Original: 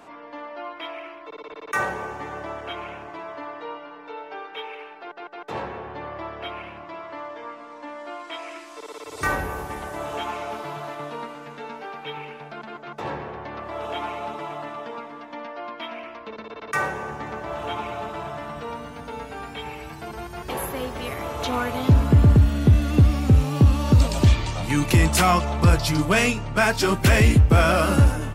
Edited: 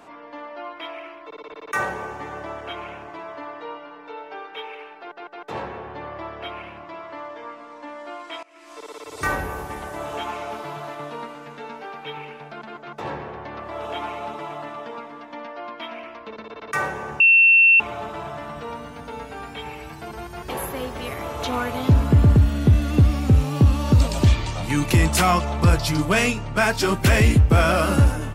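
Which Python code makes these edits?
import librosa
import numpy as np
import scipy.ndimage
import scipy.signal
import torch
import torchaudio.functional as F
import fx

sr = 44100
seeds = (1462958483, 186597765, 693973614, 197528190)

y = fx.edit(x, sr, fx.fade_in_from(start_s=8.43, length_s=0.29, curve='qua', floor_db=-20.5),
    fx.bleep(start_s=17.2, length_s=0.6, hz=2700.0, db=-10.0), tone=tone)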